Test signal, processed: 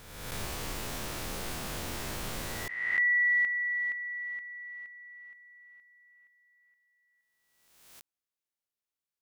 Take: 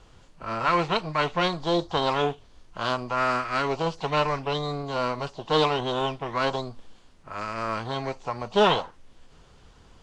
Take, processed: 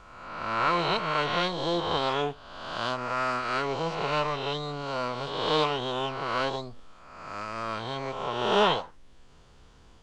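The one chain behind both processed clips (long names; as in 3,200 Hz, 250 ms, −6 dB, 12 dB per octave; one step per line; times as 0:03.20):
peak hold with a rise ahead of every peak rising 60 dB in 1.25 s
level −5 dB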